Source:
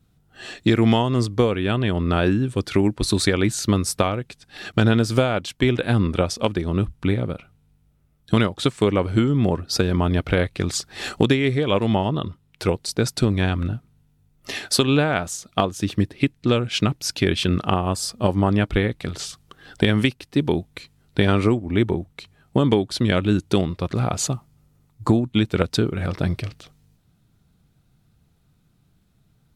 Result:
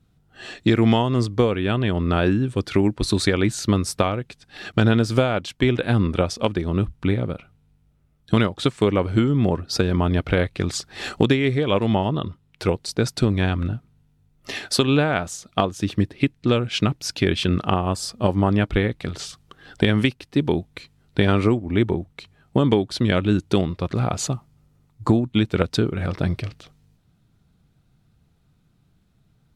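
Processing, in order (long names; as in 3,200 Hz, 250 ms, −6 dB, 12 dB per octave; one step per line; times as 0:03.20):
high-shelf EQ 8,000 Hz −7.5 dB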